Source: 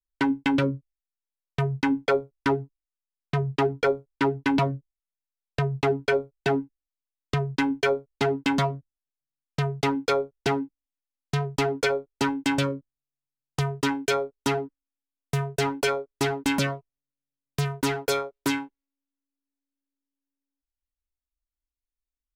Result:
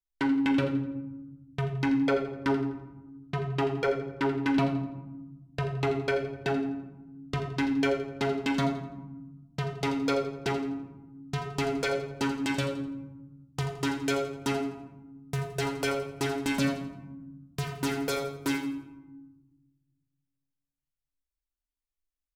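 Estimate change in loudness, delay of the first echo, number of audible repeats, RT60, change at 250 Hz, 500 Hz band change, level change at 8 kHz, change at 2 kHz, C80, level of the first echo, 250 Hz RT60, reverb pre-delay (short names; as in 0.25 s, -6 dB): -3.5 dB, 84 ms, 1, 1.1 s, -1.0 dB, -4.0 dB, -4.5 dB, -4.5 dB, 8.0 dB, -12.0 dB, 1.9 s, 22 ms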